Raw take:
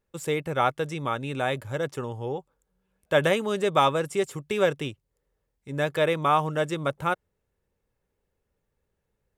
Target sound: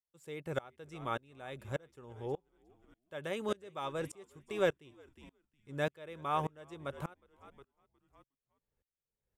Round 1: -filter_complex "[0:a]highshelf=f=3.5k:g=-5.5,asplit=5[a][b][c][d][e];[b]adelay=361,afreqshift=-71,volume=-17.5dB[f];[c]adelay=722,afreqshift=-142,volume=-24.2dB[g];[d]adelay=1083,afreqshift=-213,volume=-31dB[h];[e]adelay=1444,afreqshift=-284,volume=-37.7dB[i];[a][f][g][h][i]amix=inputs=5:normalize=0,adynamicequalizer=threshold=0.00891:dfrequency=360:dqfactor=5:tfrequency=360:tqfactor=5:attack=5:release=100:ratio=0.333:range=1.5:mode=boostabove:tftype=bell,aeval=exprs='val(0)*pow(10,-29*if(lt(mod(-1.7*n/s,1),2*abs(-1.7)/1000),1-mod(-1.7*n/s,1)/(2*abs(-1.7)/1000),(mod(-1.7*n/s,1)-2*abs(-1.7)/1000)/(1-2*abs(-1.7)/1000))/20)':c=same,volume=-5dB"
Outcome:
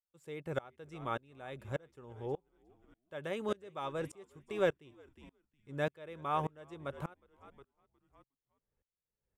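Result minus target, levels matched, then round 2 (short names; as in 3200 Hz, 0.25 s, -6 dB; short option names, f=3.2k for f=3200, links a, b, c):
8000 Hz band -4.5 dB
-filter_complex "[0:a]asplit=5[a][b][c][d][e];[b]adelay=361,afreqshift=-71,volume=-17.5dB[f];[c]adelay=722,afreqshift=-142,volume=-24.2dB[g];[d]adelay=1083,afreqshift=-213,volume=-31dB[h];[e]adelay=1444,afreqshift=-284,volume=-37.7dB[i];[a][f][g][h][i]amix=inputs=5:normalize=0,adynamicequalizer=threshold=0.00891:dfrequency=360:dqfactor=5:tfrequency=360:tqfactor=5:attack=5:release=100:ratio=0.333:range=1.5:mode=boostabove:tftype=bell,aeval=exprs='val(0)*pow(10,-29*if(lt(mod(-1.7*n/s,1),2*abs(-1.7)/1000),1-mod(-1.7*n/s,1)/(2*abs(-1.7)/1000),(mod(-1.7*n/s,1)-2*abs(-1.7)/1000)/(1-2*abs(-1.7)/1000))/20)':c=same,volume=-5dB"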